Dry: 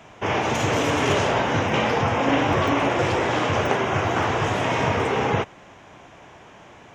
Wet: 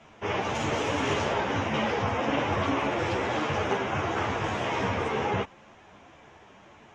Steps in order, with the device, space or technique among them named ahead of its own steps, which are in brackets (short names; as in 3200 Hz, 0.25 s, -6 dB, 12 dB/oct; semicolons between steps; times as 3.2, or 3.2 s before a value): string-machine ensemble chorus (ensemble effect; LPF 7600 Hz 12 dB/oct); gain -3 dB